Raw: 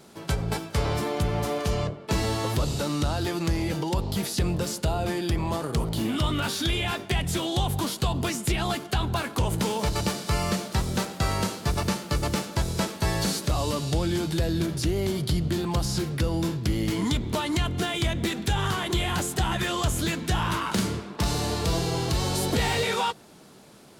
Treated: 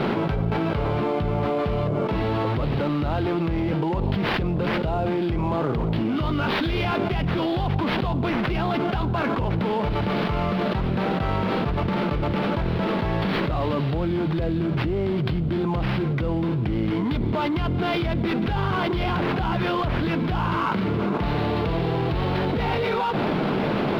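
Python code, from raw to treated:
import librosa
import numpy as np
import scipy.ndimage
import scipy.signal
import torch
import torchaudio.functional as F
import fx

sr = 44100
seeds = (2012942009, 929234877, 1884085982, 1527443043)

y = fx.peak_eq(x, sr, hz=69.0, db=-7.5, octaves=0.84)
y = fx.notch(y, sr, hz=1800.0, q=7.5)
y = fx.sample_hold(y, sr, seeds[0], rate_hz=7900.0, jitter_pct=20)
y = fx.air_absorb(y, sr, metres=400.0)
y = fx.env_flatten(y, sr, amount_pct=100)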